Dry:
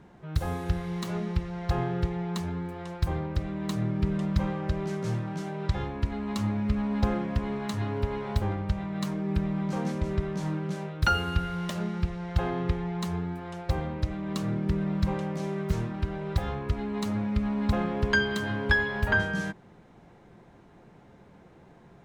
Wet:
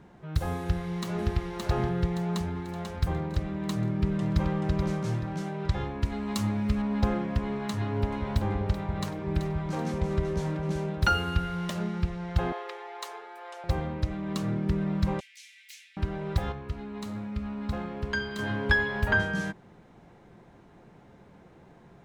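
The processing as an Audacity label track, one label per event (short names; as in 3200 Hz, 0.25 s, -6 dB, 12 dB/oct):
0.610000	1.320000	echo throw 0.57 s, feedback 45%, level -1.5 dB
2.060000	2.580000	echo throw 0.49 s, feedback 45%, level -7.5 dB
3.780000	4.620000	echo throw 0.43 s, feedback 30%, level -5.5 dB
6.030000	6.820000	high shelf 5000 Hz +9.5 dB
7.740000	11.140000	echo with dull and thin repeats by turns 0.191 s, split 970 Hz, feedback 64%, level -5.5 dB
12.520000	13.640000	steep high-pass 460 Hz
15.200000	15.970000	steep high-pass 2100 Hz 48 dB/oct
16.520000	18.390000	resonator 73 Hz, decay 0.61 s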